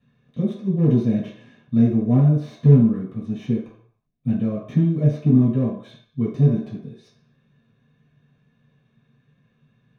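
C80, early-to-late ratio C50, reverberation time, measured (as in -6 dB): 8.0 dB, 4.0 dB, 0.60 s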